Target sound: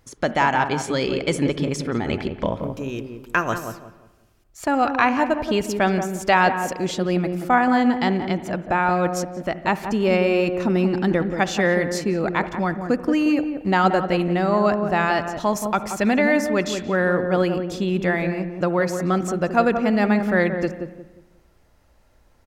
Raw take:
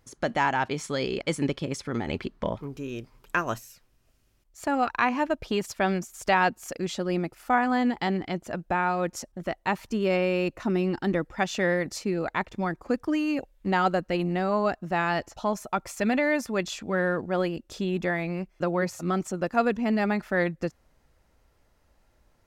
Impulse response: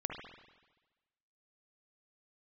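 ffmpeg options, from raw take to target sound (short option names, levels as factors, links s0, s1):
-filter_complex "[0:a]asettb=1/sr,asplit=3[s0][s1][s2];[s0]atrim=end=15.404[s3];[s1]atrim=start=15.4:end=15.81,asetpts=PTS-STARTPTS,afade=t=in:d=0.004:c=qsin,afade=t=out:st=0.406:d=0.004:c=qsin,highshelf=f=5200:g=8[s4];[s2]atrim=start=15.806[s5];[s3][s4]acrossfade=d=0.004:c1=hsin:c2=qsin[s6];[s6][s5]acrossfade=d=0.004:c1=qsin:c2=hsin,asplit=2[s7][s8];[s8]adelay=178,lowpass=f=820:p=1,volume=0.531,asplit=2[s9][s10];[s10]adelay=178,lowpass=f=820:p=1,volume=0.34,asplit=2[s11][s12];[s12]adelay=178,lowpass=f=820:p=1,volume=0.34,asplit=2[s13][s14];[s14]adelay=178,lowpass=f=820:p=1,volume=0.34[s15];[s7][s9][s11][s13][s15]amix=inputs=5:normalize=0,asplit=2[s16][s17];[1:a]atrim=start_sample=2205[s18];[s17][s18]afir=irnorm=-1:irlink=0,volume=0.282[s19];[s16][s19]amix=inputs=2:normalize=0,volume=1.5"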